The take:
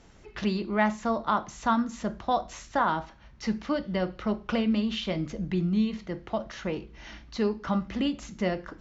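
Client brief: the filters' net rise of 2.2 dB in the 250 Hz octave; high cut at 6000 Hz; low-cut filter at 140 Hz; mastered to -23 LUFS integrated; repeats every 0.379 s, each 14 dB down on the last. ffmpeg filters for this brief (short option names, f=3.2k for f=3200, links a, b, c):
-af "highpass=140,lowpass=6k,equalizer=f=250:t=o:g=3.5,aecho=1:1:379|758:0.2|0.0399,volume=5dB"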